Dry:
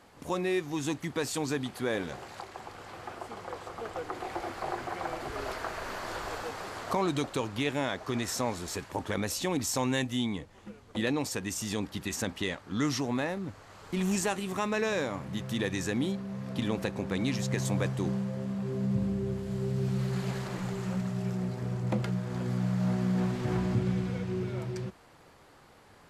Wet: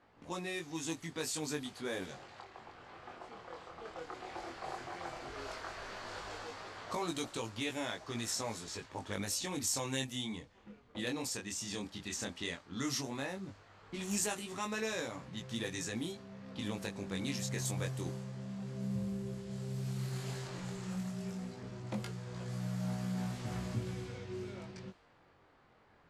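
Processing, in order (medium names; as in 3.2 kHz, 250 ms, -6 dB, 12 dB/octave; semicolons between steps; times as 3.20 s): chorus 0.13 Hz, delay 17.5 ms, depth 7.2 ms; level-controlled noise filter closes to 2.1 kHz, open at -29 dBFS; treble shelf 3.9 kHz +12 dB; trim -6 dB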